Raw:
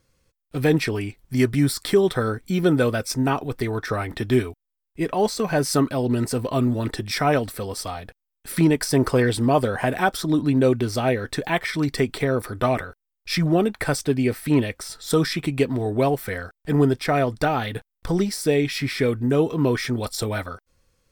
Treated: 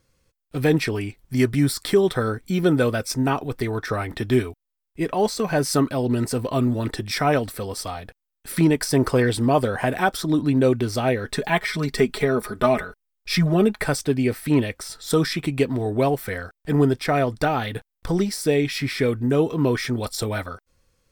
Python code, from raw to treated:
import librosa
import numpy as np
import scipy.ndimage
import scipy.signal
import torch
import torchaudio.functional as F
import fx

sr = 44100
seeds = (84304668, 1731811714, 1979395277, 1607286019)

y = fx.comb(x, sr, ms=4.8, depth=0.65, at=(11.26, 13.86))